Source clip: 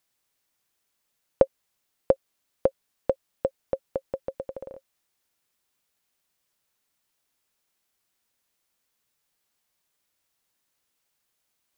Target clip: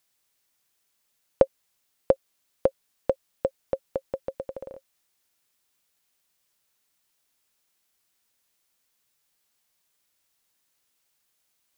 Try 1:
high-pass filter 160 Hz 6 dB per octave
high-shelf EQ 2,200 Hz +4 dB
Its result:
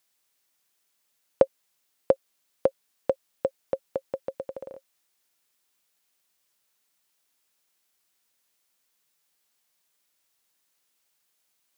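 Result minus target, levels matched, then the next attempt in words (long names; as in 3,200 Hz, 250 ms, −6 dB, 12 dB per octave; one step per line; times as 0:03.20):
125 Hz band −4.0 dB
high-shelf EQ 2,200 Hz +4 dB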